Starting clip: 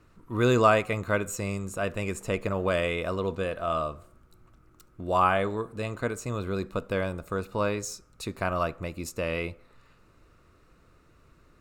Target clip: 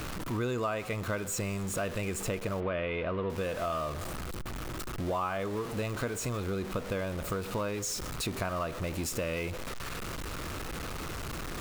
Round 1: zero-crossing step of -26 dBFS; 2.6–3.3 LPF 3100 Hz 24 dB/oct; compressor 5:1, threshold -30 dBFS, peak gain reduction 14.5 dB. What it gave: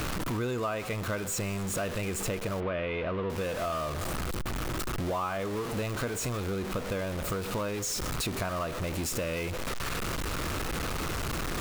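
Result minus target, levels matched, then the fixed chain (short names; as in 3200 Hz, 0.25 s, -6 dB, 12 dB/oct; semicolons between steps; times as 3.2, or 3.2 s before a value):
zero-crossing step: distortion +5 dB
zero-crossing step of -32 dBFS; 2.6–3.3 LPF 3100 Hz 24 dB/oct; compressor 5:1, threshold -30 dBFS, peak gain reduction 14 dB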